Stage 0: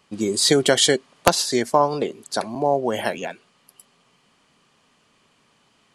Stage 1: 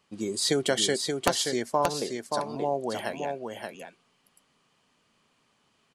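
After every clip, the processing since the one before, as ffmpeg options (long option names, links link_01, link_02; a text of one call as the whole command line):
ffmpeg -i in.wav -af "aecho=1:1:577:0.562,volume=-8.5dB" out.wav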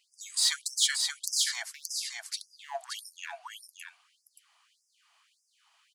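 ffmpeg -i in.wav -filter_complex "[0:a]asplit=2[link_01][link_02];[link_02]asoftclip=type=hard:threshold=-26.5dB,volume=-6.5dB[link_03];[link_01][link_03]amix=inputs=2:normalize=0,afftfilt=real='re*gte(b*sr/1024,620*pow(5000/620,0.5+0.5*sin(2*PI*1.7*pts/sr)))':imag='im*gte(b*sr/1024,620*pow(5000/620,0.5+0.5*sin(2*PI*1.7*pts/sr)))':win_size=1024:overlap=0.75" out.wav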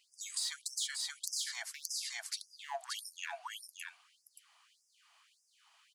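ffmpeg -i in.wav -af "acompressor=threshold=-36dB:ratio=5" out.wav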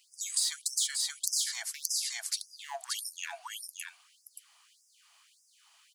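ffmpeg -i in.wav -af "highshelf=frequency=4400:gain=11" out.wav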